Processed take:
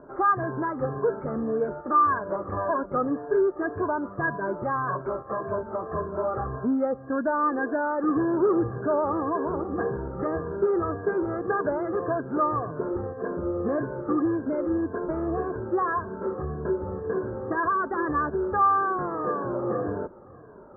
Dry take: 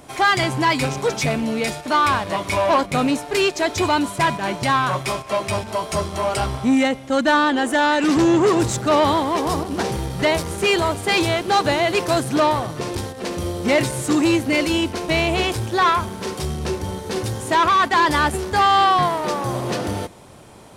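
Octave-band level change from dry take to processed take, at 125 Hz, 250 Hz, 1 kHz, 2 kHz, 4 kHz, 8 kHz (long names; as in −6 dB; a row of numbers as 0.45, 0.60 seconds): −9.5 dB, −6.5 dB, −7.5 dB, −11.5 dB, below −40 dB, below −40 dB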